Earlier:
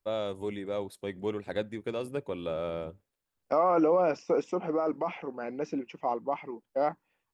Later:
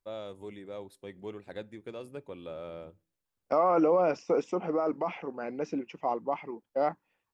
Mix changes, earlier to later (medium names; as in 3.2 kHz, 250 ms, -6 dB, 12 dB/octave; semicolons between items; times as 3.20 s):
first voice -9.5 dB; reverb: on, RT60 0.40 s